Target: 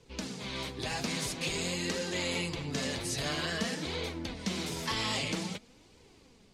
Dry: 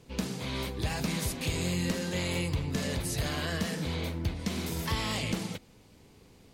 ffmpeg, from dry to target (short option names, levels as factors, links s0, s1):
-filter_complex "[0:a]lowpass=6900,highshelf=f=4100:g=6.5,acrossover=split=200[s0][s1];[s0]asoftclip=type=tanh:threshold=0.015[s2];[s1]dynaudnorm=f=440:g=3:m=1.5[s3];[s2][s3]amix=inputs=2:normalize=0,flanger=delay=1.9:depth=6.9:regen=43:speed=0.5:shape=triangular"